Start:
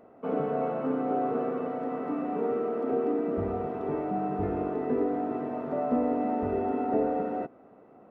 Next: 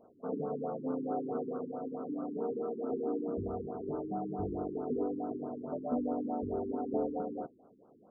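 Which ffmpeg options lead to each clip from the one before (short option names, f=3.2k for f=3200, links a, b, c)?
-af "afftfilt=real='re*lt(b*sr/1024,410*pow(1600/410,0.5+0.5*sin(2*PI*4.6*pts/sr)))':imag='im*lt(b*sr/1024,410*pow(1600/410,0.5+0.5*sin(2*PI*4.6*pts/sr)))':win_size=1024:overlap=0.75,volume=-6dB"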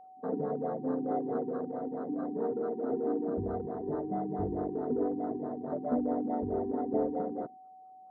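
-af "afwtdn=0.00501,aeval=exprs='val(0)+0.00224*sin(2*PI*750*n/s)':c=same,volume=3dB"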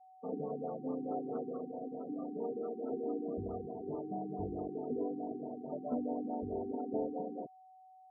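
-af "afftfilt=real='re*gte(hypot(re,im),0.0178)':imag='im*gte(hypot(re,im),0.0178)':win_size=1024:overlap=0.75,volume=-6dB"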